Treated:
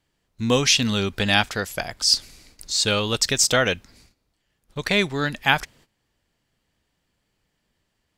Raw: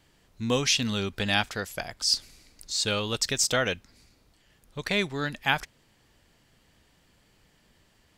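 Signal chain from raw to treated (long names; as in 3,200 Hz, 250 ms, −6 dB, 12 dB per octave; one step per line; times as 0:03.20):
noise gate −57 dBFS, range −16 dB
level +6 dB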